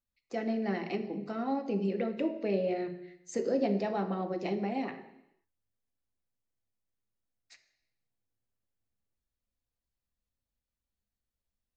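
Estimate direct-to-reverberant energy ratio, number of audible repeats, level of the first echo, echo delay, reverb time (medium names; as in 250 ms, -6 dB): 5.0 dB, no echo, no echo, no echo, 0.85 s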